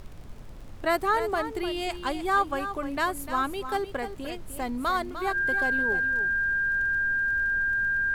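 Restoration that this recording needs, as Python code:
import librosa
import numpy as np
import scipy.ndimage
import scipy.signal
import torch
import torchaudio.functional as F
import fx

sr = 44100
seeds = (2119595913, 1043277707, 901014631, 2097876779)

y = fx.fix_declick_ar(x, sr, threshold=6.5)
y = fx.notch(y, sr, hz=1600.0, q=30.0)
y = fx.noise_reduce(y, sr, print_start_s=0.07, print_end_s=0.57, reduce_db=30.0)
y = fx.fix_echo_inverse(y, sr, delay_ms=301, level_db=-10.5)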